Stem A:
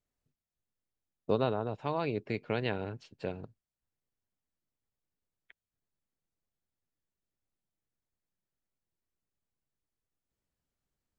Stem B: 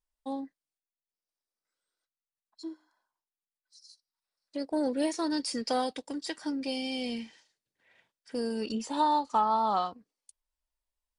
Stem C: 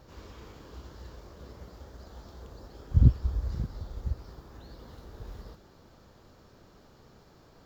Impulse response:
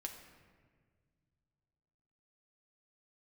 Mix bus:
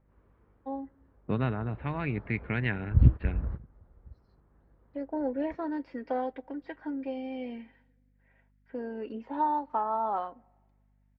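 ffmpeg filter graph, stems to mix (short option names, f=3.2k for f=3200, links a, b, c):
-filter_complex "[0:a]equalizer=f=125:t=o:w=1:g=7,equalizer=f=250:t=o:w=1:g=4,equalizer=f=500:t=o:w=1:g=-9,equalizer=f=1k:t=o:w=1:g=-4,equalizer=f=2k:t=o:w=1:g=11,equalizer=f=4k:t=o:w=1:g=12,volume=0dB,asplit=2[a][b];[1:a]highpass=250,equalizer=f=1.2k:w=6.6:g=-7.5,aecho=1:1:7.5:0.34,adelay=400,volume=-2dB,asplit=2[c][d];[d]volume=-21dB[e];[2:a]volume=-0.5dB[f];[b]apad=whole_len=337622[g];[f][g]sidechaingate=range=-18dB:threshold=-51dB:ratio=16:detection=peak[h];[3:a]atrim=start_sample=2205[i];[e][i]afir=irnorm=-1:irlink=0[j];[a][c][h][j]amix=inputs=4:normalize=0,aeval=exprs='val(0)+0.000501*(sin(2*PI*50*n/s)+sin(2*PI*2*50*n/s)/2+sin(2*PI*3*50*n/s)/3+sin(2*PI*4*50*n/s)/4+sin(2*PI*5*50*n/s)/5)':c=same,lowpass=f=2k:w=0.5412,lowpass=f=2k:w=1.3066"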